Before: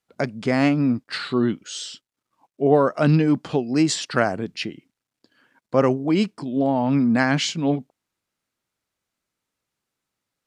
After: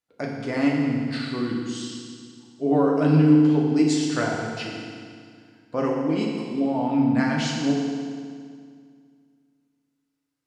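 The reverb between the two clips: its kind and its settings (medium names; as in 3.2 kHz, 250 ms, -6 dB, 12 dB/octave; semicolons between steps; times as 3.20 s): FDN reverb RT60 2.1 s, low-frequency decay 1.2×, high-frequency decay 0.9×, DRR -2.5 dB; trim -8.5 dB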